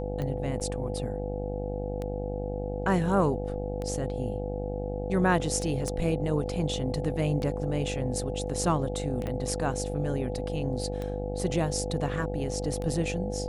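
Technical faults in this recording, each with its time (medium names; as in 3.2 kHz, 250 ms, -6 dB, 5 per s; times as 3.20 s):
buzz 50 Hz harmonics 17 -34 dBFS
tick 33 1/3 rpm -22 dBFS
whine 500 Hz -36 dBFS
0.60–0.61 s: dropout 7.3 ms
5.88 s: pop -22 dBFS
9.27 s: pop -21 dBFS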